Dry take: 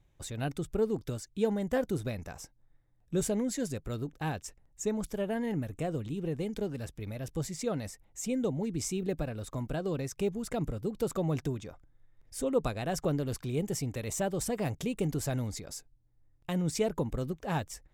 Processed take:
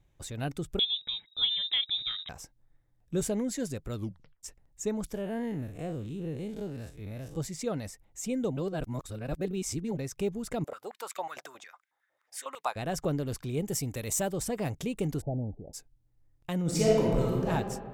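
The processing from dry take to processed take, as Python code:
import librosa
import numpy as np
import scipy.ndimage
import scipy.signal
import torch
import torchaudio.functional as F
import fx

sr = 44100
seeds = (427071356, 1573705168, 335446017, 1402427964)

y = fx.freq_invert(x, sr, carrier_hz=3800, at=(0.79, 2.29))
y = fx.spec_blur(y, sr, span_ms=93.0, at=(5.15, 7.36), fade=0.02)
y = fx.filter_held_highpass(y, sr, hz=11.0, low_hz=600.0, high_hz=2200.0, at=(10.64, 12.76))
y = fx.high_shelf(y, sr, hz=fx.line((13.68, 8500.0), (14.31, 5000.0)), db=10.0, at=(13.68, 14.31), fade=0.02)
y = fx.steep_lowpass(y, sr, hz=840.0, slope=96, at=(15.2, 15.73), fade=0.02)
y = fx.reverb_throw(y, sr, start_s=16.62, length_s=0.87, rt60_s=1.8, drr_db=-5.0)
y = fx.edit(y, sr, fx.tape_stop(start_s=3.95, length_s=0.48),
    fx.reverse_span(start_s=8.57, length_s=1.4), tone=tone)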